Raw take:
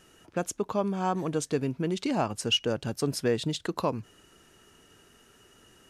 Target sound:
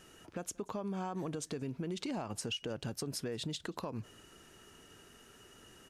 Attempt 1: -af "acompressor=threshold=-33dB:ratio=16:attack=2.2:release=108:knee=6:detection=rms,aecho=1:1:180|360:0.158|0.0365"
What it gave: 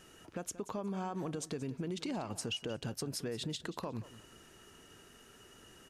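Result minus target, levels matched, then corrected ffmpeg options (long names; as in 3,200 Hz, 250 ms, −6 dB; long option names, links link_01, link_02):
echo-to-direct +12 dB
-af "acompressor=threshold=-33dB:ratio=16:attack=2.2:release=108:knee=6:detection=rms,aecho=1:1:180:0.0398"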